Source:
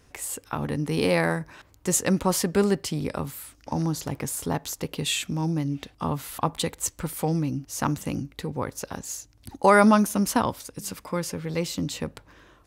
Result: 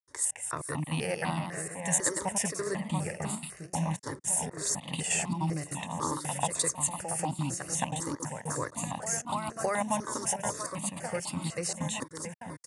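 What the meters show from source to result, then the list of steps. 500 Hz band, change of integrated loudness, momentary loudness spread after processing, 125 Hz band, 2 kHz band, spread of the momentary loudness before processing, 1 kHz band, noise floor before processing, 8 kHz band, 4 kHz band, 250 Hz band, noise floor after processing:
-9.5 dB, -5.5 dB, 7 LU, -6.0 dB, -6.5 dB, 12 LU, -6.5 dB, -58 dBFS, +1.5 dB, -6.5 dB, -10.0 dB, -51 dBFS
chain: compressor 6:1, threshold -23 dBFS, peak gain reduction 11 dB; echo with dull and thin repeats by turns 0.682 s, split 2000 Hz, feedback 68%, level -6.5 dB; step gate ".xxx.xxx.xx" 197 bpm -60 dB; HPF 150 Hz 12 dB/oct; high shelf 5900 Hz +9 dB; echoes that change speed 0.22 s, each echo +1 st, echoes 3, each echo -6 dB; downsampling 22050 Hz; comb 1.1 ms, depth 39%; step phaser 4 Hz 720–1700 Hz

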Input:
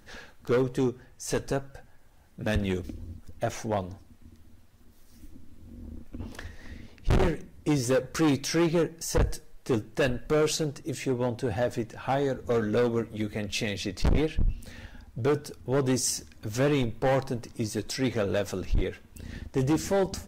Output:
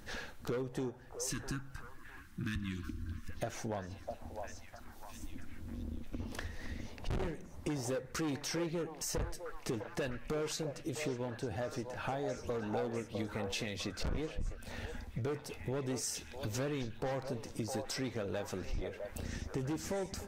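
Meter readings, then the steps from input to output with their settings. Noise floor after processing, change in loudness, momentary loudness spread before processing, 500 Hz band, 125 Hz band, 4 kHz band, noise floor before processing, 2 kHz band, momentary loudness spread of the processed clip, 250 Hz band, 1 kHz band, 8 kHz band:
-52 dBFS, -11.0 dB, 17 LU, -11.0 dB, -10.0 dB, -8.0 dB, -54 dBFS, -8.5 dB, 9 LU, -11.0 dB, -9.5 dB, -7.5 dB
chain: spectral delete 1.16–3.29, 360–1000 Hz; compressor 6:1, threshold -39 dBFS, peak gain reduction 16 dB; delay with a stepping band-pass 0.655 s, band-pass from 710 Hz, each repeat 0.7 oct, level -2.5 dB; gain +2.5 dB

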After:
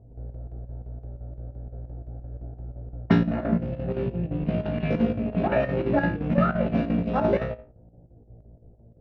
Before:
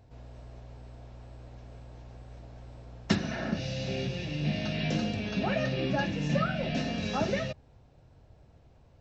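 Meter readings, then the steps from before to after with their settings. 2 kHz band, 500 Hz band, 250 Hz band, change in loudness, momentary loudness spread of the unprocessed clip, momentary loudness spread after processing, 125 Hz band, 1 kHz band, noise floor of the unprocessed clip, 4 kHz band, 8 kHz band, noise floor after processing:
+1.0 dB, +7.5 dB, +7.0 dB, +6.0 dB, 19 LU, 17 LU, +5.5 dB, +6.0 dB, -59 dBFS, -9.5 dB, n/a, -53 dBFS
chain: Wiener smoothing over 41 samples; LPF 1500 Hz 12 dB/oct; low shelf 150 Hz -5 dB; on a send: flutter echo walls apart 3 m, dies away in 0.36 s; on the sum: low-pass opened by the level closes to 680 Hz, open at -26.5 dBFS; chopper 5.8 Hz, depth 60%, duty 75%; gain +8 dB

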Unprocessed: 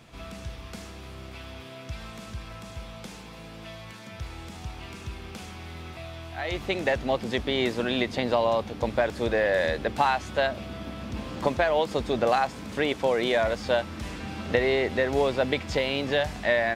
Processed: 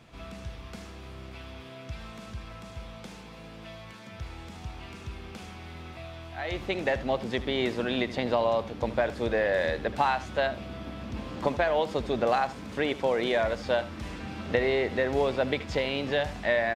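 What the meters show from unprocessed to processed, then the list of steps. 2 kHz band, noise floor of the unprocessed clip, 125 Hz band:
-2.5 dB, -43 dBFS, -2.0 dB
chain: high shelf 5900 Hz -6.5 dB; on a send: echo 77 ms -16 dB; on the sum: gain -2 dB

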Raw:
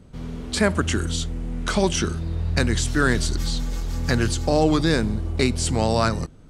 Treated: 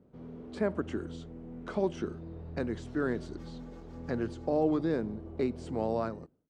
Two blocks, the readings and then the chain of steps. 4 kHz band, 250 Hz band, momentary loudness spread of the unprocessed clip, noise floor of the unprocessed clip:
-25.5 dB, -9.5 dB, 8 LU, -44 dBFS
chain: ending faded out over 0.52 s; band-pass 410 Hz, Q 0.88; gain -7 dB

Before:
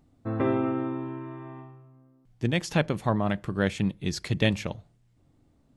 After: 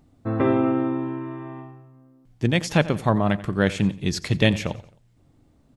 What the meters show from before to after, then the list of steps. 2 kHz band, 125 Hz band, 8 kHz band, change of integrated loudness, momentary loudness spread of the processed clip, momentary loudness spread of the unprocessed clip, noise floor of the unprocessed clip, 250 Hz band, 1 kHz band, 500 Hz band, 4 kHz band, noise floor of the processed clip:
+5.0 dB, +5.0 dB, +5.0 dB, +5.0 dB, 13 LU, 14 LU, -65 dBFS, +5.5 dB, +5.0 dB, +5.0 dB, +5.0 dB, -60 dBFS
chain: feedback echo 88 ms, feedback 42%, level -18 dB; gain +5 dB

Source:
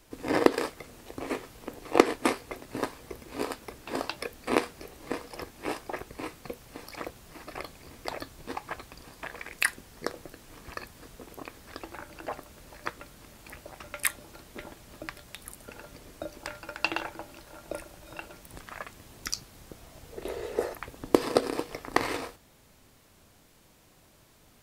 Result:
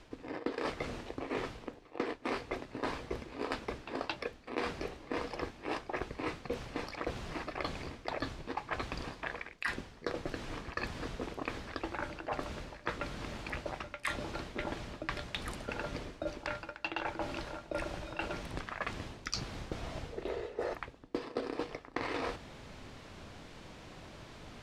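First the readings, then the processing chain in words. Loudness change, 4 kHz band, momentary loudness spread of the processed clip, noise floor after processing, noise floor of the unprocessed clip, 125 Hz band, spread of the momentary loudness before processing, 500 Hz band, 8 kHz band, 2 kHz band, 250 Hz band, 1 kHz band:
-6.5 dB, -4.0 dB, 6 LU, -55 dBFS, -60 dBFS, +3.0 dB, 19 LU, -6.5 dB, -12.0 dB, -4.0 dB, -6.5 dB, -4.5 dB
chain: LPF 4200 Hz 12 dB/oct; reverse; compressor 16:1, threshold -44 dBFS, peak gain reduction 33.5 dB; reverse; gain +10.5 dB

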